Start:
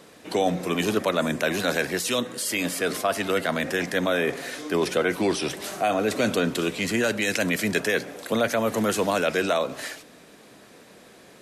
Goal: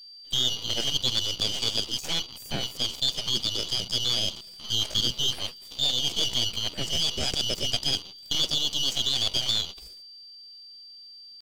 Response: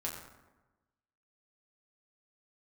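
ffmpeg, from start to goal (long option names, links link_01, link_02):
-filter_complex "[0:a]afftfilt=real='real(if(lt(b,920),b+92*(1-2*mod(floor(b/92),2)),b),0)':imag='imag(if(lt(b,920),b+92*(1-2*mod(floor(b/92),2)),b),0)':win_size=2048:overlap=0.75,afwtdn=0.0316,acrossover=split=200|480|2100[link_01][link_02][link_03][link_04];[link_03]aeval=exprs='abs(val(0))':channel_layout=same[link_05];[link_01][link_02][link_05][link_04]amix=inputs=4:normalize=0,aeval=exprs='val(0)+0.00631*sin(2*PI*3500*n/s)':channel_layout=same,asetrate=58866,aresample=44100,atempo=0.749154"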